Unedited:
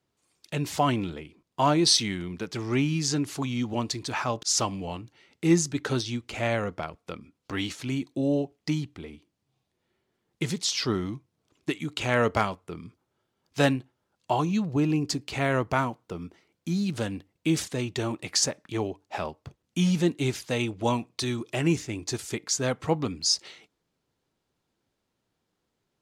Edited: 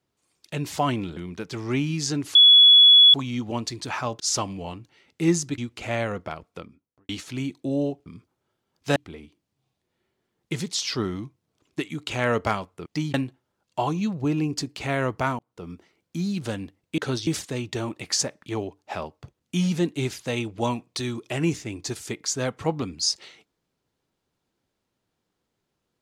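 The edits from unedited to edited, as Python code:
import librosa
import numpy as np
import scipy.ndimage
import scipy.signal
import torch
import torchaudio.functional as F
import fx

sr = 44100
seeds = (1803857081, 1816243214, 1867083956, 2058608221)

y = fx.studio_fade_out(x, sr, start_s=6.99, length_s=0.62)
y = fx.edit(y, sr, fx.cut(start_s=1.17, length_s=1.02),
    fx.insert_tone(at_s=3.37, length_s=0.79, hz=3390.0, db=-9.0),
    fx.move(start_s=5.81, length_s=0.29, to_s=17.5),
    fx.swap(start_s=8.58, length_s=0.28, other_s=12.76, other_length_s=0.9),
    fx.fade_in_span(start_s=15.91, length_s=0.31), tone=tone)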